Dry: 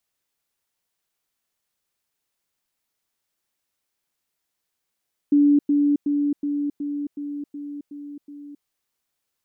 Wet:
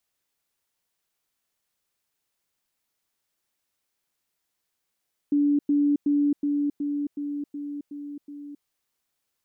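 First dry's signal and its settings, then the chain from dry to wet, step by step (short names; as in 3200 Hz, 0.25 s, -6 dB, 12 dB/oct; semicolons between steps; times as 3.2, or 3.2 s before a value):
level ladder 289 Hz -12.5 dBFS, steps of -3 dB, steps 9, 0.27 s 0.10 s
limiter -18 dBFS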